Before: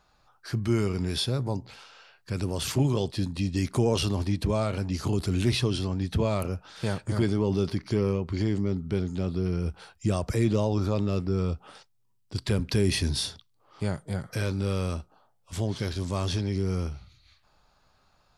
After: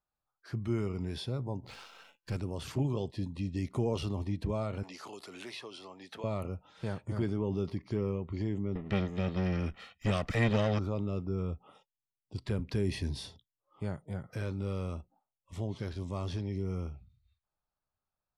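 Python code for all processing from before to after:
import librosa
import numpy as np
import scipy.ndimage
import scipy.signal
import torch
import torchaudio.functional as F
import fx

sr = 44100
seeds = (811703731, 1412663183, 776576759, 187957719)

y = fx.chain(x, sr, fx.high_shelf(hz=3100.0, db=7.5),
    fx.leveller(passes=3),
    fx.comb_fb(f0_hz=170.0, decay_s=0.59, harmonics='all', damping=0.0, mix_pct=40), at=(1.63, 2.37))
y = fx.chain(y, sr, fx.highpass(hz=640.0, slope=12),
    fx.band_squash(depth_pct=70), at=(4.83, 6.24))
y = fx.chain(y, sr, fx.lower_of_two(delay_ms=1.6),
    fx.peak_eq(hz=2800.0, db=14.5, octaves=2.3),
    fx.small_body(hz=(210.0, 1900.0), ring_ms=20, db=7), at=(8.75, 10.79))
y = fx.noise_reduce_blind(y, sr, reduce_db=19)
y = fx.high_shelf(y, sr, hz=3300.0, db=-11.0)
y = F.gain(torch.from_numpy(y), -7.0).numpy()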